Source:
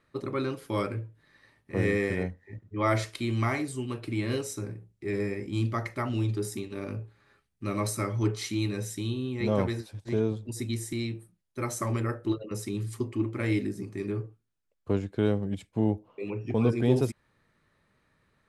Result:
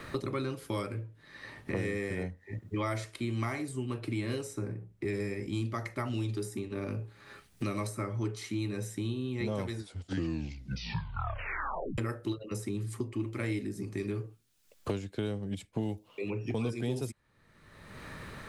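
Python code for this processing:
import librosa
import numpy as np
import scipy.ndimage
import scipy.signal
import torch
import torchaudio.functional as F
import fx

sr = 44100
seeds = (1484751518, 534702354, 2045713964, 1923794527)

y = fx.high_shelf(x, sr, hz=7800.0, db=-7.5, at=(1.03, 1.85))
y = fx.edit(y, sr, fx.tape_stop(start_s=9.7, length_s=2.28), tone=tone)
y = fx.dynamic_eq(y, sr, hz=8900.0, q=1.0, threshold_db=-54.0, ratio=4.0, max_db=5)
y = fx.band_squash(y, sr, depth_pct=100)
y = y * librosa.db_to_amplitude(-5.5)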